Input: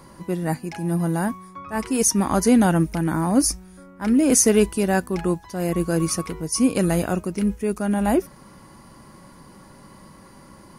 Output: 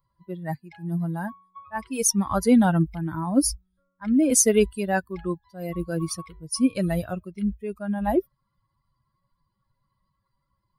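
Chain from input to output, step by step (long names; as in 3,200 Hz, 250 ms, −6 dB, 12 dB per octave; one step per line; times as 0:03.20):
spectral dynamics exaggerated over time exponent 2
level +1 dB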